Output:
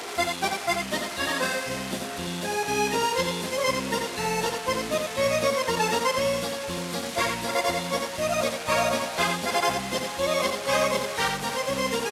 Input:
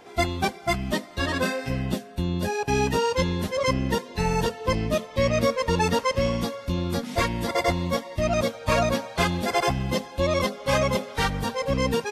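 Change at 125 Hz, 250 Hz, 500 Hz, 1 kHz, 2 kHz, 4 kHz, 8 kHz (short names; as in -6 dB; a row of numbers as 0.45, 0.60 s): -10.0, -5.5, -1.0, +0.5, +1.5, +2.5, +5.0 dB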